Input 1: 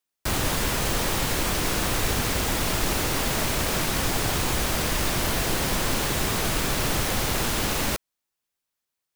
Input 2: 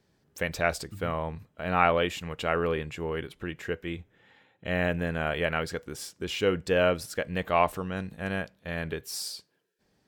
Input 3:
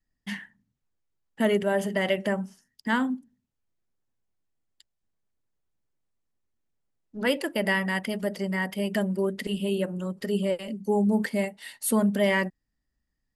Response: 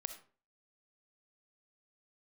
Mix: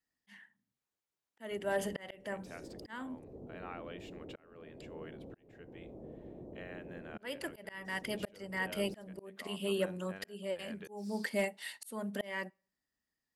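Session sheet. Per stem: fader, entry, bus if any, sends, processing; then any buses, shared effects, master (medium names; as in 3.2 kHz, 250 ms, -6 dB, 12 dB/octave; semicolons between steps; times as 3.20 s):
-9.5 dB, 1.25 s, bus A, send -13 dB, inverse Chebyshev low-pass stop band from 1.7 kHz, stop band 60 dB
-11.5 dB, 1.90 s, bus A, send -20.5 dB, gate with hold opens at -56 dBFS; compression 6:1, threshold -26 dBFS, peak gain reduction 9.5 dB
-2.0 dB, 0.00 s, no bus, send -24 dB, none
bus A: 0.0 dB, low-pass 4 kHz 6 dB/octave; compression 1.5:1, threshold -45 dBFS, peak gain reduction 5.5 dB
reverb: on, RT60 0.40 s, pre-delay 20 ms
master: high-pass 430 Hz 6 dB/octave; slow attack 560 ms; hard clipper -23 dBFS, distortion -32 dB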